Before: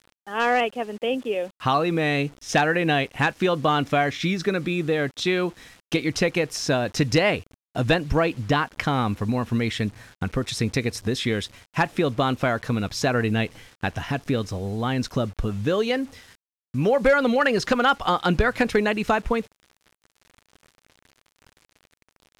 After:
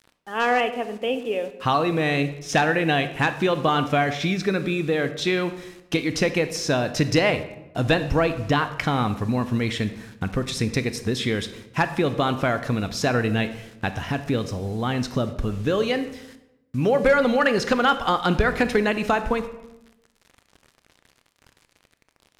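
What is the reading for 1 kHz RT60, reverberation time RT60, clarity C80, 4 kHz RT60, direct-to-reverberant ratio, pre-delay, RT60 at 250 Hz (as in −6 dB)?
0.85 s, 0.90 s, 14.0 dB, 0.60 s, 10.5 dB, 24 ms, 1.1 s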